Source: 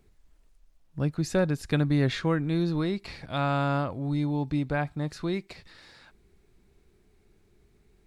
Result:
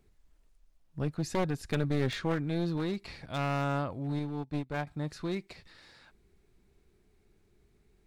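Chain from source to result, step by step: one-sided wavefolder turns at -26.5 dBFS; 4.19–4.87 s: upward expansion 2.5:1, over -37 dBFS; trim -4 dB

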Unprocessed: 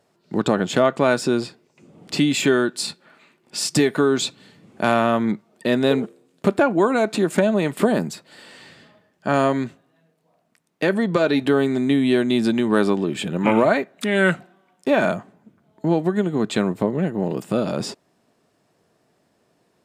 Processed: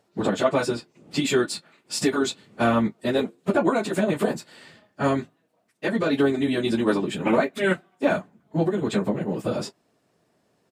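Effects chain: early reflections 25 ms -16 dB, 43 ms -14 dB; plain phase-vocoder stretch 0.54×

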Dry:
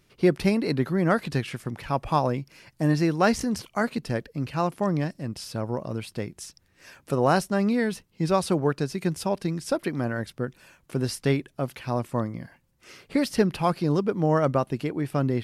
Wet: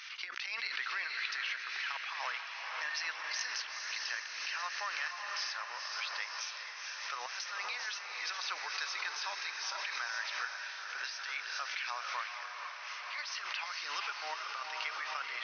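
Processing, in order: high-pass 1.4 kHz 24 dB/octave; treble shelf 4.6 kHz -7 dB; compressor with a negative ratio -41 dBFS, ratio -0.5; brick-wall FIR low-pass 6.4 kHz; echo that smears into a reverb 462 ms, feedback 68%, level -4.5 dB; swell ahead of each attack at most 39 dB/s; trim +2 dB

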